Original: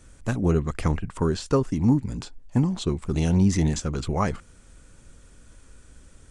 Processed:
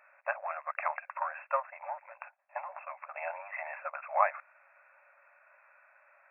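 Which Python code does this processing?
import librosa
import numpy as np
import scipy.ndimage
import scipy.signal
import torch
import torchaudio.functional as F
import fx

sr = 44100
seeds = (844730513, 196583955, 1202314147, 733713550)

p1 = np.clip(x, -10.0 ** (-24.0 / 20.0), 10.0 ** (-24.0 / 20.0))
p2 = x + (p1 * librosa.db_to_amplitude(-9.0))
y = fx.brickwall_bandpass(p2, sr, low_hz=550.0, high_hz=2700.0)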